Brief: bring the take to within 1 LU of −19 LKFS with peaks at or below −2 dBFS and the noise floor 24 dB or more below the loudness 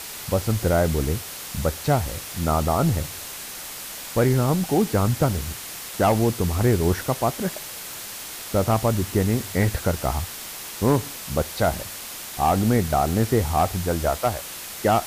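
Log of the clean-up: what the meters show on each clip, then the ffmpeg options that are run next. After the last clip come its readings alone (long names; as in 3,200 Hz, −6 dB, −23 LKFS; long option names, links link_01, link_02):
background noise floor −36 dBFS; target noise floor −48 dBFS; integrated loudness −24.0 LKFS; sample peak −7.5 dBFS; target loudness −19.0 LKFS
→ -af "afftdn=noise_reduction=12:noise_floor=-36"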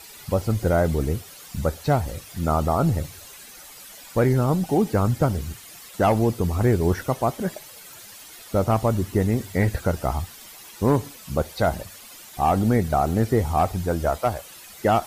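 background noise floor −44 dBFS; target noise floor −48 dBFS
→ -af "afftdn=noise_reduction=6:noise_floor=-44"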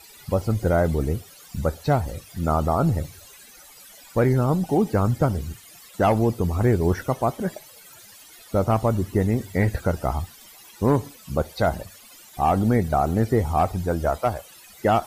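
background noise floor −48 dBFS; integrated loudness −23.5 LKFS; sample peak −7.5 dBFS; target loudness −19.0 LKFS
→ -af "volume=4.5dB"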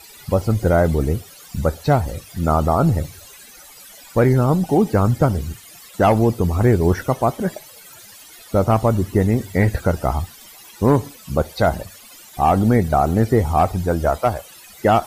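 integrated loudness −19.0 LKFS; sample peak −3.0 dBFS; background noise floor −43 dBFS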